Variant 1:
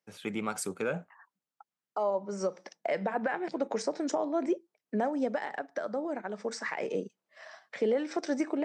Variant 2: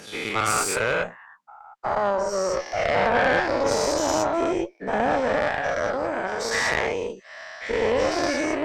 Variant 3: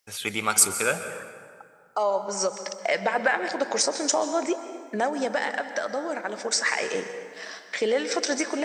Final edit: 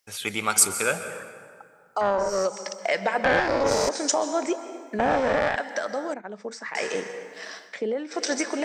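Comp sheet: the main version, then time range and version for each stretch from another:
3
2.01–2.45 s: from 2
3.24–3.89 s: from 2
4.99–5.56 s: from 2
6.14–6.75 s: from 1
7.72–8.18 s: from 1, crossfade 0.16 s

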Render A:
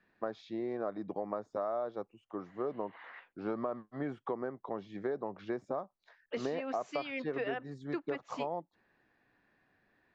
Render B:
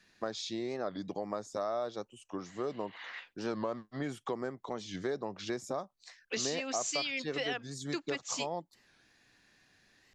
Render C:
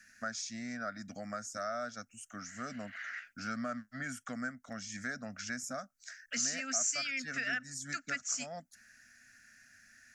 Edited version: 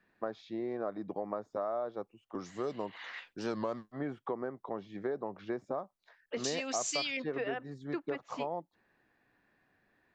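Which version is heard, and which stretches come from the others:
A
2.35–3.92 s: from B
6.44–7.17 s: from B
not used: C

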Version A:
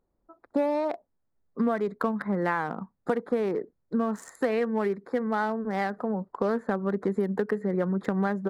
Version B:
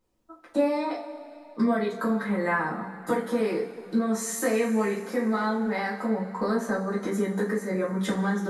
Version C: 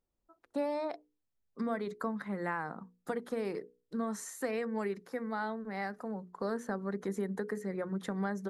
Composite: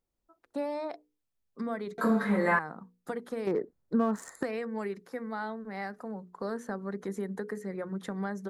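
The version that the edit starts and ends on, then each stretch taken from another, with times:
C
1.98–2.59 s: from B
3.47–4.43 s: from A

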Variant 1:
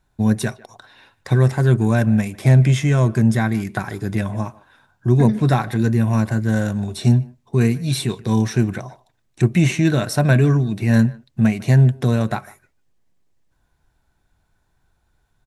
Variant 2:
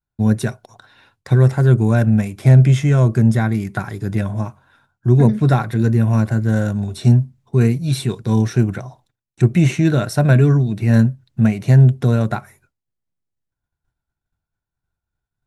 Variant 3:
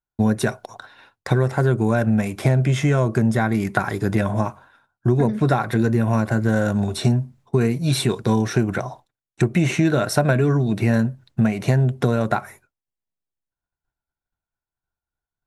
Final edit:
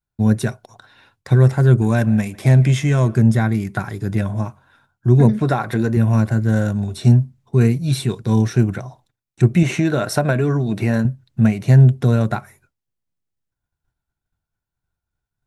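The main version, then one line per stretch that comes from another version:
2
1.82–3.15 s: from 1
5.39–5.97 s: from 3
9.63–11.05 s: from 3

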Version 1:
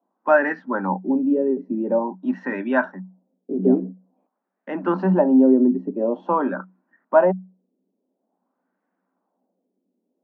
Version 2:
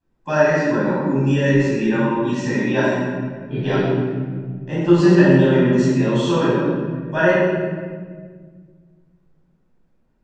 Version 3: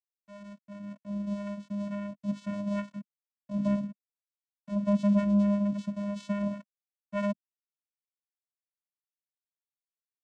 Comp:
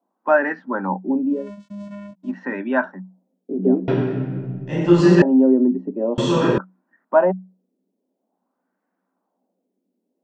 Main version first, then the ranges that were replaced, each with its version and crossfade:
1
1.39–2.27 s: from 3, crossfade 0.24 s
3.88–5.22 s: from 2
6.18–6.58 s: from 2

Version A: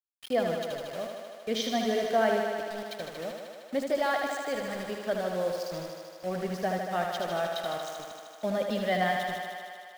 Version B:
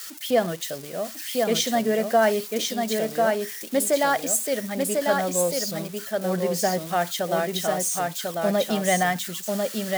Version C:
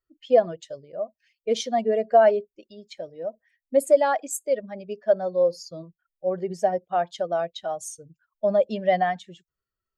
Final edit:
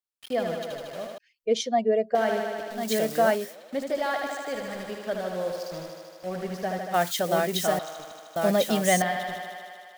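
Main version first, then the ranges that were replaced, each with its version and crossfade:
A
1.18–2.15 s: from C
2.81–3.45 s: from B, crossfade 0.24 s
6.94–7.79 s: from B
8.36–9.02 s: from B

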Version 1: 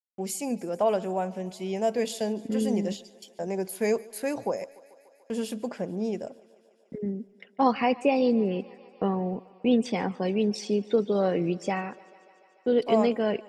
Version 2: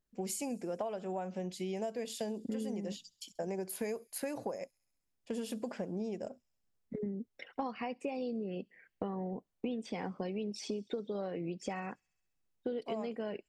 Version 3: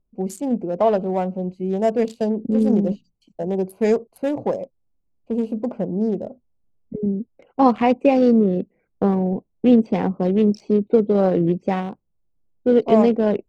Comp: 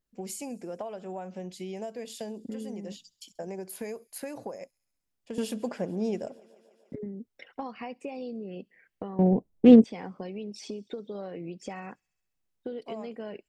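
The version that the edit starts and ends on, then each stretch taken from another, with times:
2
5.38–6.95 s: from 1
9.19–9.84 s: from 3

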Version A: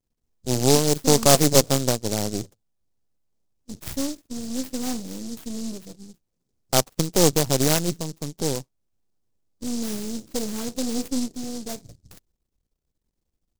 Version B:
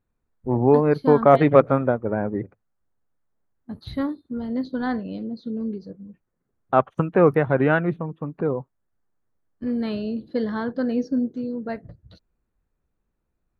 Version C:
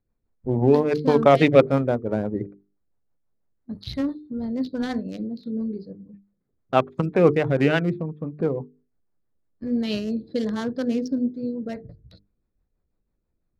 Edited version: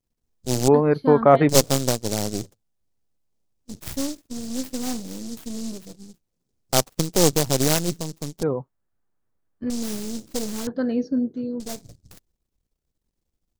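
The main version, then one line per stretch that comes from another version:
A
0.68–1.49 s: from B
8.43–9.70 s: from B
10.67–11.60 s: from B
not used: C

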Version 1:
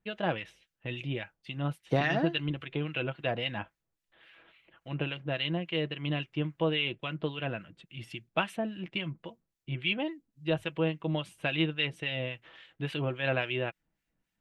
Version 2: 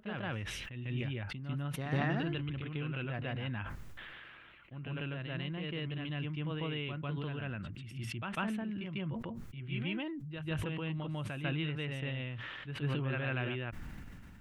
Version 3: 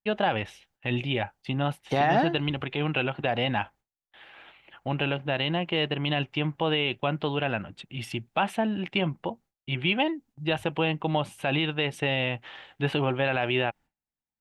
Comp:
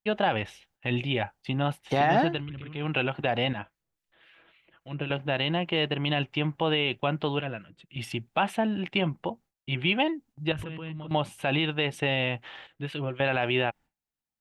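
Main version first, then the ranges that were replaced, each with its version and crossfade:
3
2.36–2.82 s: from 2, crossfade 0.24 s
3.53–5.10 s: from 1
7.41–7.96 s: from 1
10.52–11.11 s: from 2
12.67–13.20 s: from 1

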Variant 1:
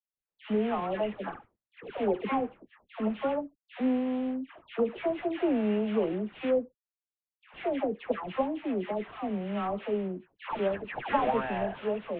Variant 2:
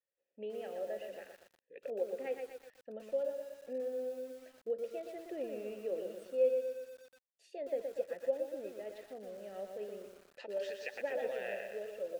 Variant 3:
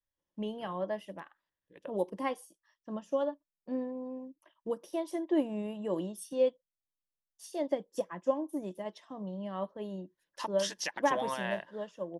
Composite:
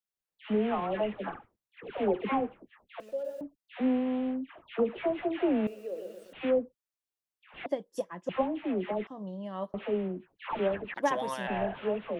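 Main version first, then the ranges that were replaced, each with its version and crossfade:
1
3.00–3.41 s: from 2
5.67–6.33 s: from 2
7.66–8.29 s: from 3
9.07–9.74 s: from 3
10.94–11.47 s: from 3

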